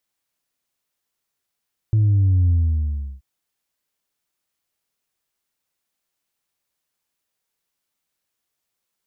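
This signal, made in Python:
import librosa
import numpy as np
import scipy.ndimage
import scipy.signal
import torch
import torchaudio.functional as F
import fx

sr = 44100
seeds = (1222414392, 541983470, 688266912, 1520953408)

y = fx.sub_drop(sr, level_db=-13.5, start_hz=110.0, length_s=1.28, drive_db=1, fade_s=0.72, end_hz=65.0)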